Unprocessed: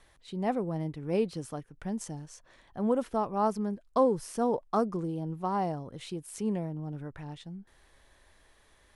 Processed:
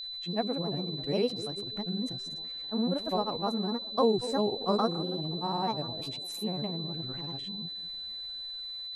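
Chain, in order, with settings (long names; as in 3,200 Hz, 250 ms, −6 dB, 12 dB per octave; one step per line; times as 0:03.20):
feedback echo with a band-pass in the loop 279 ms, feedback 45%, band-pass 450 Hz, level −11.5 dB
granular cloud, pitch spread up and down by 3 semitones
steady tone 4,000 Hz −37 dBFS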